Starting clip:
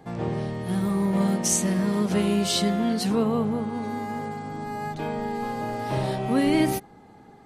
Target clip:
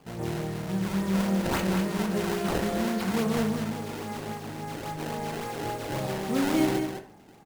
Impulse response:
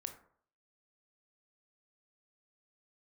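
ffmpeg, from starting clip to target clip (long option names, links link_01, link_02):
-filter_complex "[0:a]acrusher=samples=22:mix=1:aa=0.000001:lfo=1:lforange=35.2:lforate=3.6,aecho=1:1:204:0.447[link_01];[1:a]atrim=start_sample=2205,asetrate=52920,aresample=44100[link_02];[link_01][link_02]afir=irnorm=-1:irlink=0"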